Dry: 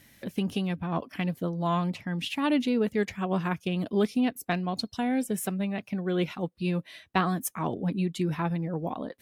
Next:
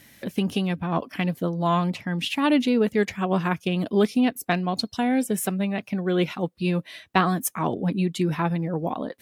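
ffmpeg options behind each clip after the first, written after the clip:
-af "lowshelf=f=96:g=-6.5,volume=5.5dB"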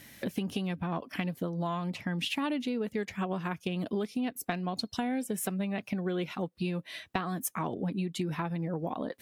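-af "acompressor=threshold=-29dB:ratio=10"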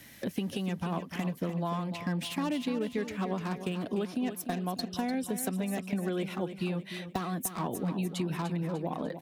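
-filter_complex "[0:a]acrossover=split=160|1100|3700[a][b][c][d];[c]aeval=exprs='0.0119*(abs(mod(val(0)/0.0119+3,4)-2)-1)':c=same[e];[a][b][e][d]amix=inputs=4:normalize=0,aecho=1:1:298|596|894|1192|1490:0.316|0.145|0.0669|0.0308|0.0142"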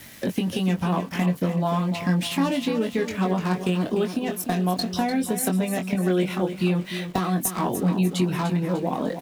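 -filter_complex "[0:a]areverse,acompressor=mode=upward:threshold=-41dB:ratio=2.5,areverse,aeval=exprs='val(0)*gte(abs(val(0)),0.00266)':c=same,asplit=2[a][b];[b]adelay=22,volume=-5dB[c];[a][c]amix=inputs=2:normalize=0,volume=7.5dB"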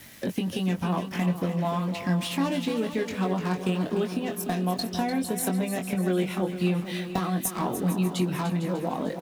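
-af "aecho=1:1:454|908|1362|1816:0.237|0.0972|0.0399|0.0163,volume=-3.5dB"

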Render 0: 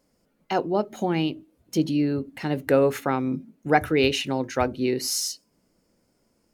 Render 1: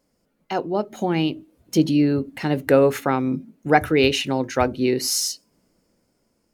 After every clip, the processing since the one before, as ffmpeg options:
-af "dynaudnorm=f=290:g=9:m=11.5dB,volume=-1dB"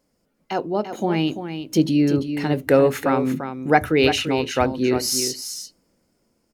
-af "aecho=1:1:342:0.355"

